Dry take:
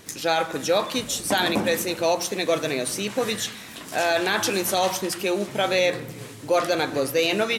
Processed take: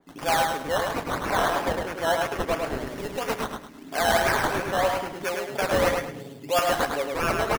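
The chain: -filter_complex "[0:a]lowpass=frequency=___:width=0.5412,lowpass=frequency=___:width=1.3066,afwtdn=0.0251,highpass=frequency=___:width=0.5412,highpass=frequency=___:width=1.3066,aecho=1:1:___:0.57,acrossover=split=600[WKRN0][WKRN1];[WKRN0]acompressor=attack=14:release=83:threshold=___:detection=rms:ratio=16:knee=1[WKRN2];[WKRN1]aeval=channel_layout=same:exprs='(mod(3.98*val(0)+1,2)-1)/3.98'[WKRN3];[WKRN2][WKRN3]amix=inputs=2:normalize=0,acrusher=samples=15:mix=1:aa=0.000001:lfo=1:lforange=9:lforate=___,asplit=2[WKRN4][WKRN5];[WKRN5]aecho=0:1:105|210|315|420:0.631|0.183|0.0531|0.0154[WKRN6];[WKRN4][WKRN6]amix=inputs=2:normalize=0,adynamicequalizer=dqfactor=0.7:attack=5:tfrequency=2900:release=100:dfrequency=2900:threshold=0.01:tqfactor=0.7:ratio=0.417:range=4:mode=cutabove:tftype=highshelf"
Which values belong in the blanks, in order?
11000, 11000, 150, 150, 7.2, 0.0126, 3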